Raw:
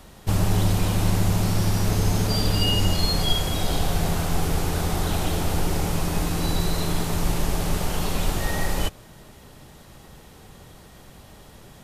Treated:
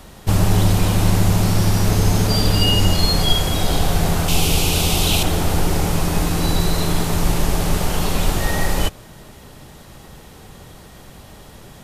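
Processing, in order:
0:04.28–0:05.23: high shelf with overshoot 2,200 Hz +6.5 dB, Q 3
level +5.5 dB

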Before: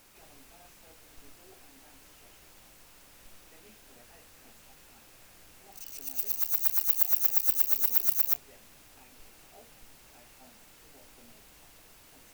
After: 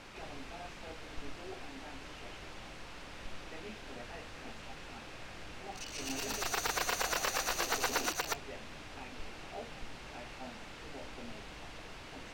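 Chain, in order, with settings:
0:05.86–0:08.12: delay that plays each chunk backwards 117 ms, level −1 dB
low-pass filter 3,800 Hz 12 dB per octave
level +11 dB

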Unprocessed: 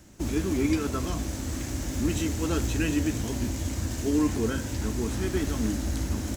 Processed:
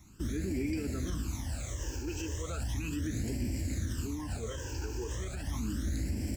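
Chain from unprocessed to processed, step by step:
brickwall limiter −22.5 dBFS, peak gain reduction 8.5 dB
all-pass phaser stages 12, 0.36 Hz, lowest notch 200–1,200 Hz
level −2.5 dB

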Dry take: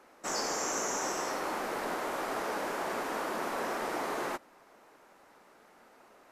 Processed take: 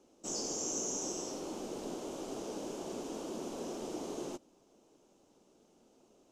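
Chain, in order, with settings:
drawn EQ curve 340 Hz 0 dB, 1,900 Hz −25 dB, 3,000 Hz −6 dB, 4,400 Hz −8 dB, 6,400 Hz +1 dB, 12,000 Hz −14 dB

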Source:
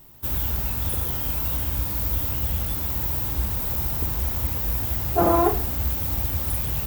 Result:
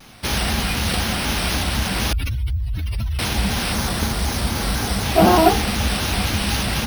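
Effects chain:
0:02.13–0:03.19: expanding power law on the bin magnitudes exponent 2.8
hollow resonant body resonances 210/770/1,500/2,600 Hz, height 15 dB, ringing for 85 ms
bad sample-rate conversion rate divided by 3×, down none, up hold
0:03.72–0:05.03: parametric band 2,700 Hz −6.5 dB 0.79 octaves
pitch modulation by a square or saw wave square 4 Hz, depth 100 cents
level +3 dB

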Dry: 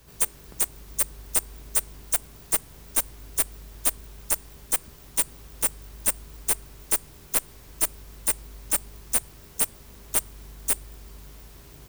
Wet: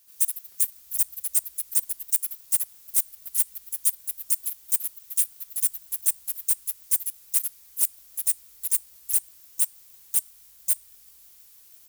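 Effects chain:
pitch vibrato 13 Hz 18 cents
first-order pre-emphasis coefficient 0.97
delay with pitch and tempo change per echo 107 ms, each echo +3 semitones, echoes 3, each echo −6 dB
level −1.5 dB

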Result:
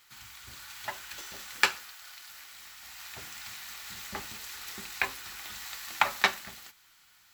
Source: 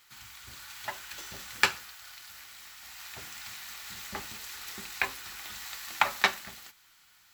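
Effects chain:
0:01.21–0:02.54: parametric band 100 Hz −9.5 dB 1.8 octaves

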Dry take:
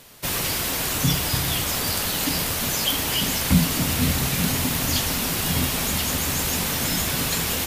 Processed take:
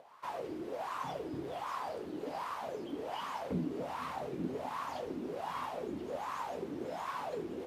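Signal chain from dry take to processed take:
upward compression, threshold −38 dBFS
LFO wah 1.3 Hz 320–1,100 Hz, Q 6.9
level +2.5 dB

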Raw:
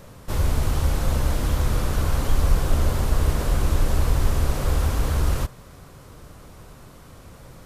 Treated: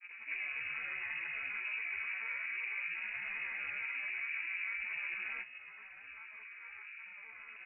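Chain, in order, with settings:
channel vocoder with a chord as carrier bare fifth, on C3
high-pass filter 310 Hz 12 dB per octave
gate on every frequency bin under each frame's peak −25 dB strong
dynamic equaliser 1,600 Hz, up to −6 dB, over −59 dBFS, Q 1.6
downward compressor, threshold −41 dBFS, peak gain reduction 8.5 dB
granular cloud, grains 28 per second, pitch spread up and down by 3 semitones
voice inversion scrambler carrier 2,700 Hz
level +7 dB

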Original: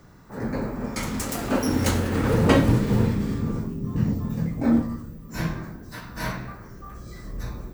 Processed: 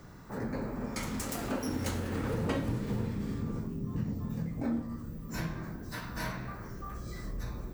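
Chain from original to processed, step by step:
downward compressor 2.5 to 1, threshold −36 dBFS, peak gain reduction 16 dB

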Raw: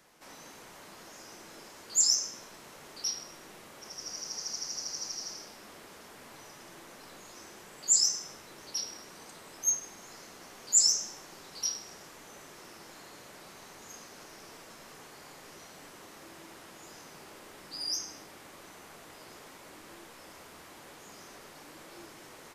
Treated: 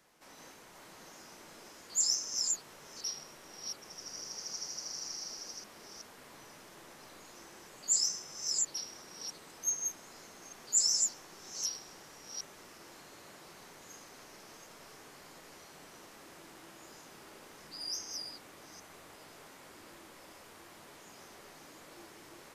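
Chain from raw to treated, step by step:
delay that plays each chunk backwards 376 ms, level −3 dB
level −5 dB

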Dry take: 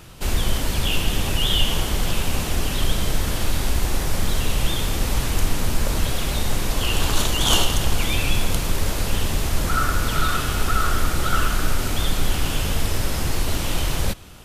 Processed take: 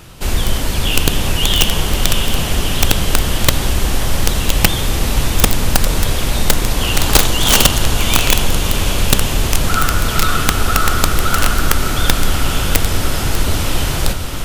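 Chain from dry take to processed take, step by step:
on a send: feedback delay with all-pass diffusion 686 ms, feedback 61%, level −7 dB
on the sum: wrap-around overflow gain 8 dB
level +5 dB

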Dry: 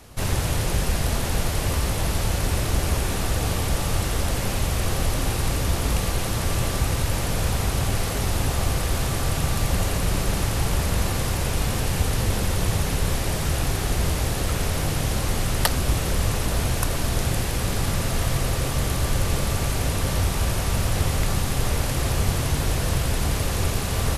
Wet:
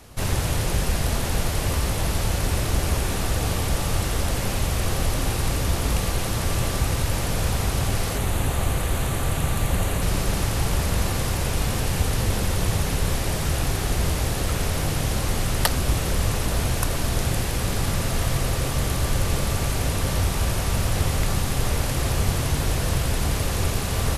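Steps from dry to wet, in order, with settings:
0:08.17–0:10.02: parametric band 5,200 Hz −10 dB 0.4 octaves

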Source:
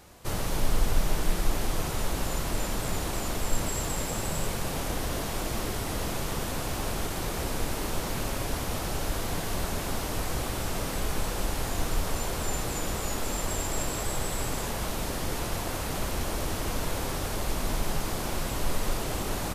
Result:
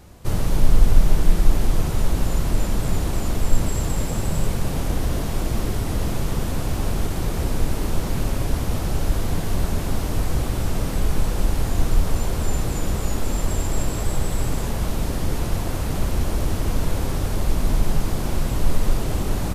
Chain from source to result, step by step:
low-shelf EQ 320 Hz +11.5 dB

